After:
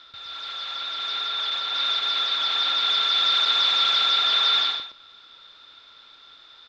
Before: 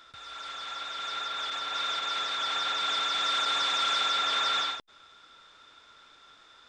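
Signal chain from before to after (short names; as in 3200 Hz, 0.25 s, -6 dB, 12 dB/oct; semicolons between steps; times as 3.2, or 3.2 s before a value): synth low-pass 4100 Hz, resonance Q 3.4; on a send: echo 0.118 s -9 dB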